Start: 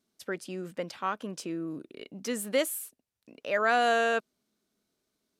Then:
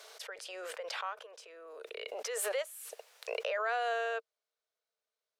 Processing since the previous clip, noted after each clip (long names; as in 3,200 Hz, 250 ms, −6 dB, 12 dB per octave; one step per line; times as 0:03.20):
Chebyshev high-pass filter 450 Hz, order 6
high-shelf EQ 7,800 Hz −11 dB
background raised ahead of every attack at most 20 dB per second
level −8 dB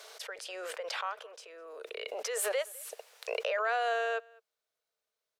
slap from a distant wall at 35 metres, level −25 dB
level +2.5 dB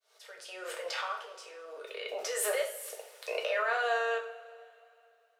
fade in at the beginning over 0.75 s
coupled-rooms reverb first 0.44 s, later 3 s, from −22 dB, DRR −0.5 dB
level −2 dB